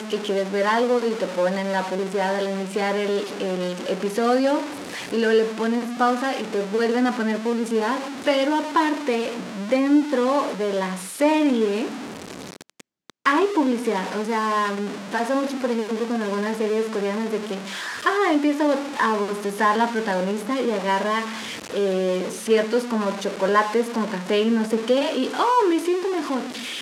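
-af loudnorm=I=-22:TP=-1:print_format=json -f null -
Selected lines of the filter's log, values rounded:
"input_i" : "-22.7",
"input_tp" : "-5.7",
"input_lra" : "2.5",
"input_thresh" : "-32.8",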